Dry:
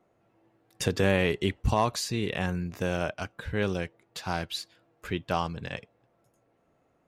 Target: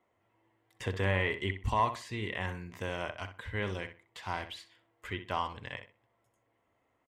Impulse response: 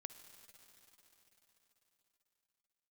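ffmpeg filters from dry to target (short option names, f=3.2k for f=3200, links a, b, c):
-filter_complex "[0:a]acrossover=split=2600[a][b];[b]acompressor=threshold=-42dB:ratio=4:attack=1:release=60[c];[a][c]amix=inputs=2:normalize=0,equalizer=f=100:t=o:w=0.33:g=7,equalizer=f=160:t=o:w=0.33:g=-11,equalizer=f=1k:t=o:w=0.33:g=10,equalizer=f=2k:t=o:w=0.33:g=12,equalizer=f=3.15k:t=o:w=0.33:g=9,equalizer=f=8k:t=o:w=0.33:g=6,asplit=2[d][e];[e]adelay=63,lowpass=f=3.2k:p=1,volume=-9.5dB,asplit=2[f][g];[g]adelay=63,lowpass=f=3.2k:p=1,volume=0.25,asplit=2[h][i];[i]adelay=63,lowpass=f=3.2k:p=1,volume=0.25[j];[d][f][h][j]amix=inputs=4:normalize=0,volume=-8.5dB"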